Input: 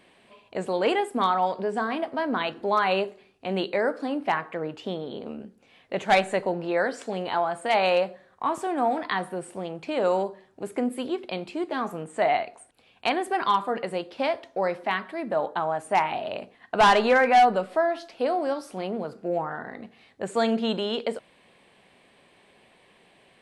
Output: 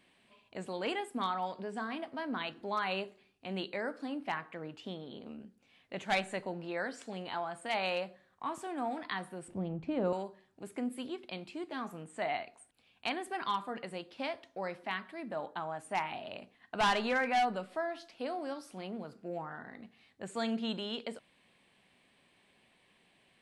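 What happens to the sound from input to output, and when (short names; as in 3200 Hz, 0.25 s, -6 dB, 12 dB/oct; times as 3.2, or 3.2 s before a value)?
9.48–10.13 tilt -4.5 dB/oct
whole clip: EQ curve 270 Hz 0 dB, 440 Hz -6 dB, 2800 Hz +1 dB; gain -8.5 dB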